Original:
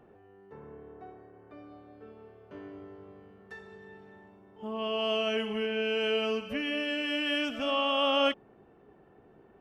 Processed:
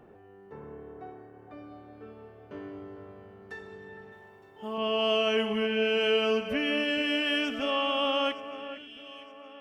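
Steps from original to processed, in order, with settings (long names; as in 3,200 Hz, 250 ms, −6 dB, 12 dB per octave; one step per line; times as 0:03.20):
fade-out on the ending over 2.65 s
0:04.12–0:04.78: spectral tilt +2 dB per octave
delay that swaps between a low-pass and a high-pass 457 ms, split 2,300 Hz, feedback 63%, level −12 dB
level +3.5 dB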